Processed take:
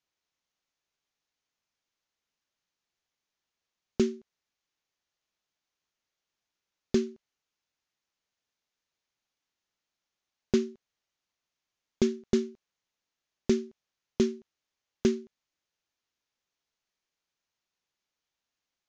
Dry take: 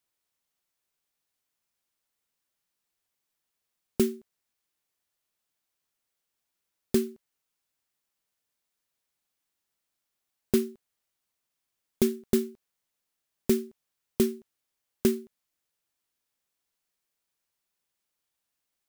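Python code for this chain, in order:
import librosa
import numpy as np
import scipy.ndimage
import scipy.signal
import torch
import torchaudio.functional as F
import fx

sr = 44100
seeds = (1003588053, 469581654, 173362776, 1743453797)

y = scipy.signal.sosfilt(scipy.signal.ellip(4, 1.0, 40, 6600.0, 'lowpass', fs=sr, output='sos'), x)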